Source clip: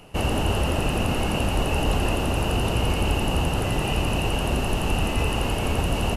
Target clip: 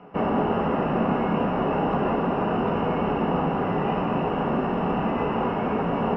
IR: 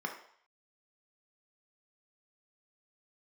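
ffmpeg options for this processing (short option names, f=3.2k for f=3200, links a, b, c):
-filter_complex "[0:a]lowpass=1.6k[a];[1:a]atrim=start_sample=2205,atrim=end_sample=3087[b];[a][b]afir=irnorm=-1:irlink=0"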